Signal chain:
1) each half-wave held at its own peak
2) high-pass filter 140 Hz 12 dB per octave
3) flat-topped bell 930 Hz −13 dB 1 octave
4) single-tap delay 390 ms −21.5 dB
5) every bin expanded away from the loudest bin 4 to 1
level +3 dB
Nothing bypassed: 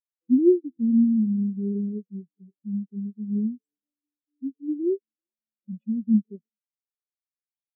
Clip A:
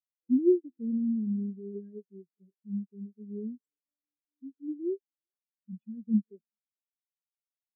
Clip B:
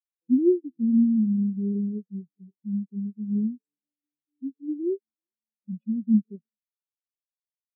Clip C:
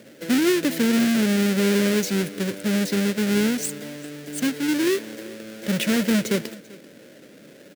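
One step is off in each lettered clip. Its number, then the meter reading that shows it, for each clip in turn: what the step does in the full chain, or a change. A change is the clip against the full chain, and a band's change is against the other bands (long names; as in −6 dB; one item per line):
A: 1, distortion level −5 dB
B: 2, change in integrated loudness −1.0 LU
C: 5, change in crest factor −3.0 dB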